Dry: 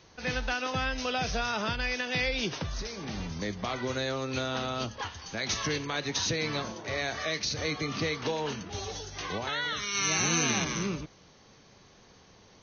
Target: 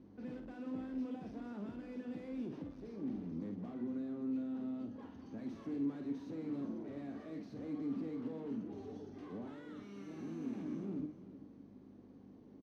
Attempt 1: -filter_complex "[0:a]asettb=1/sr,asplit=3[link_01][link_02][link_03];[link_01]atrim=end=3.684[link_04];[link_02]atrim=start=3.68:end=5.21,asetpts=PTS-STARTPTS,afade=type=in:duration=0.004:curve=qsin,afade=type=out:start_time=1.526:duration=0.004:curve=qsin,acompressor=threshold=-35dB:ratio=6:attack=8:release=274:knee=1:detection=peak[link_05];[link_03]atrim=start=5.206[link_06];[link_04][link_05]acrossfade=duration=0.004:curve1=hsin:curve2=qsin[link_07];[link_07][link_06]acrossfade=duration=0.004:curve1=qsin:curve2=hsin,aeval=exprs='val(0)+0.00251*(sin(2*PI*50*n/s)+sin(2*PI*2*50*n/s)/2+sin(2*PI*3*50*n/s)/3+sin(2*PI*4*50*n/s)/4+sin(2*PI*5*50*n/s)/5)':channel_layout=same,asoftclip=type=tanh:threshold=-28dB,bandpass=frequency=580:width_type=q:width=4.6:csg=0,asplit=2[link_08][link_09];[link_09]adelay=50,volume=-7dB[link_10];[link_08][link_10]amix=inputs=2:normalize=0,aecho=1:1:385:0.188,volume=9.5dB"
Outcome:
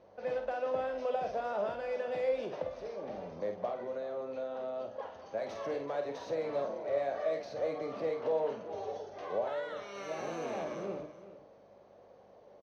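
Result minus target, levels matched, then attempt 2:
250 Hz band −14.5 dB; soft clipping: distortion −8 dB
-filter_complex "[0:a]asettb=1/sr,asplit=3[link_01][link_02][link_03];[link_01]atrim=end=3.684[link_04];[link_02]atrim=start=3.68:end=5.21,asetpts=PTS-STARTPTS,afade=type=in:duration=0.004:curve=qsin,afade=type=out:start_time=1.526:duration=0.004:curve=qsin,acompressor=threshold=-35dB:ratio=6:attack=8:release=274:knee=1:detection=peak[link_05];[link_03]atrim=start=5.206[link_06];[link_04][link_05]acrossfade=duration=0.004:curve1=hsin:curve2=qsin[link_07];[link_07][link_06]acrossfade=duration=0.004:curve1=qsin:curve2=hsin,aeval=exprs='val(0)+0.00251*(sin(2*PI*50*n/s)+sin(2*PI*2*50*n/s)/2+sin(2*PI*3*50*n/s)/3+sin(2*PI*4*50*n/s)/4+sin(2*PI*5*50*n/s)/5)':channel_layout=same,asoftclip=type=tanh:threshold=-39.5dB,bandpass=frequency=270:width_type=q:width=4.6:csg=0,asplit=2[link_08][link_09];[link_09]adelay=50,volume=-7dB[link_10];[link_08][link_10]amix=inputs=2:normalize=0,aecho=1:1:385:0.188,volume=9.5dB"

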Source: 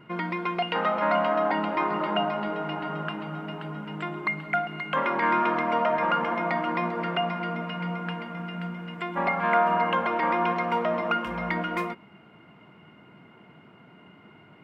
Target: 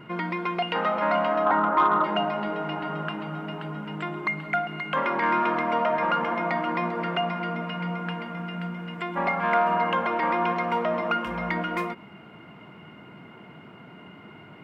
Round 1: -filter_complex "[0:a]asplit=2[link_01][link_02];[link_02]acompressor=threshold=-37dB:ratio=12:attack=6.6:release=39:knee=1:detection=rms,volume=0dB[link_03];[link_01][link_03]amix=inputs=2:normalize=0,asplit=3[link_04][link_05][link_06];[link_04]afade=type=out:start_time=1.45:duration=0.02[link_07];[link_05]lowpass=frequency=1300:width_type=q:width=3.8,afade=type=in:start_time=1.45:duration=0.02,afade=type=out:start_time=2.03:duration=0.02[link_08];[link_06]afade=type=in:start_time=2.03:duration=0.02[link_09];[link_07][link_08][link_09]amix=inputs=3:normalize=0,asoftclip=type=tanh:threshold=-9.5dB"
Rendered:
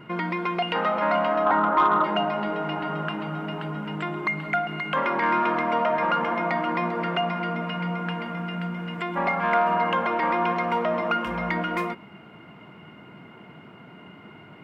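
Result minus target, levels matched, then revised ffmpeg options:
downward compressor: peak gain reduction −10.5 dB
-filter_complex "[0:a]asplit=2[link_01][link_02];[link_02]acompressor=threshold=-48.5dB:ratio=12:attack=6.6:release=39:knee=1:detection=rms,volume=0dB[link_03];[link_01][link_03]amix=inputs=2:normalize=0,asplit=3[link_04][link_05][link_06];[link_04]afade=type=out:start_time=1.45:duration=0.02[link_07];[link_05]lowpass=frequency=1300:width_type=q:width=3.8,afade=type=in:start_time=1.45:duration=0.02,afade=type=out:start_time=2.03:duration=0.02[link_08];[link_06]afade=type=in:start_time=2.03:duration=0.02[link_09];[link_07][link_08][link_09]amix=inputs=3:normalize=0,asoftclip=type=tanh:threshold=-9.5dB"

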